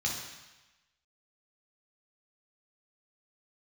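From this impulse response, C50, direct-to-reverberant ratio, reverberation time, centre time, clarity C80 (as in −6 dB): 3.0 dB, −2.5 dB, 1.1 s, 51 ms, 5.5 dB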